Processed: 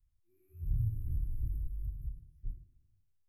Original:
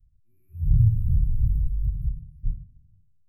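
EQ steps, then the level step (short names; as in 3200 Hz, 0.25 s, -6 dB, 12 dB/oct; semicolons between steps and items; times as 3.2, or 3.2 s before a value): resonant low shelf 260 Hz -10.5 dB, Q 3; -2.0 dB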